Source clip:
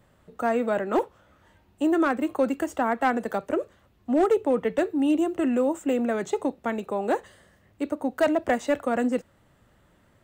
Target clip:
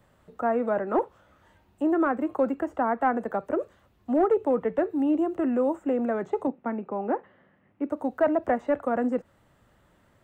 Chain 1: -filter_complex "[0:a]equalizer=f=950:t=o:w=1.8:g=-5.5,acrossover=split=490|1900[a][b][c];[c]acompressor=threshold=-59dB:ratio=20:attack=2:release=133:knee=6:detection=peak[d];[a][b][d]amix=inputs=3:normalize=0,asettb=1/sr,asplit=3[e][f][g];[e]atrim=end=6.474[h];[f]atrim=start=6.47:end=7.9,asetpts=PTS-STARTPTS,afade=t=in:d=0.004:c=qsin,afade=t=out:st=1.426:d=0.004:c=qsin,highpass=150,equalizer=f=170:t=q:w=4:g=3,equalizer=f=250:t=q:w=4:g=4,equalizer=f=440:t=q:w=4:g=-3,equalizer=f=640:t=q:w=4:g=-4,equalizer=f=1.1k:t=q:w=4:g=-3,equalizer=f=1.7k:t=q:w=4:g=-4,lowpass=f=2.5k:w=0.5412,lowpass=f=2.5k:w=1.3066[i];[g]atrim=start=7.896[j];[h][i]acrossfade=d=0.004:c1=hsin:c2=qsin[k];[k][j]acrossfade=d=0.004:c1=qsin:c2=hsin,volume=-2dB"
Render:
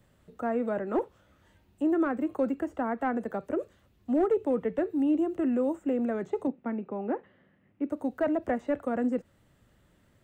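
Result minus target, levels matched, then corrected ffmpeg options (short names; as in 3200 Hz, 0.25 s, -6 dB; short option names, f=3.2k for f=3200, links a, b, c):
1000 Hz band -4.0 dB
-filter_complex "[0:a]equalizer=f=950:t=o:w=1.8:g=2.5,acrossover=split=490|1900[a][b][c];[c]acompressor=threshold=-59dB:ratio=20:attack=2:release=133:knee=6:detection=peak[d];[a][b][d]amix=inputs=3:normalize=0,asettb=1/sr,asplit=3[e][f][g];[e]atrim=end=6.474[h];[f]atrim=start=6.47:end=7.9,asetpts=PTS-STARTPTS,afade=t=in:d=0.004:c=qsin,afade=t=out:st=1.426:d=0.004:c=qsin,highpass=150,equalizer=f=170:t=q:w=4:g=3,equalizer=f=250:t=q:w=4:g=4,equalizer=f=440:t=q:w=4:g=-3,equalizer=f=640:t=q:w=4:g=-4,equalizer=f=1.1k:t=q:w=4:g=-3,equalizer=f=1.7k:t=q:w=4:g=-4,lowpass=f=2.5k:w=0.5412,lowpass=f=2.5k:w=1.3066[i];[g]atrim=start=7.896[j];[h][i]acrossfade=d=0.004:c1=hsin:c2=qsin[k];[k][j]acrossfade=d=0.004:c1=qsin:c2=hsin,volume=-2dB"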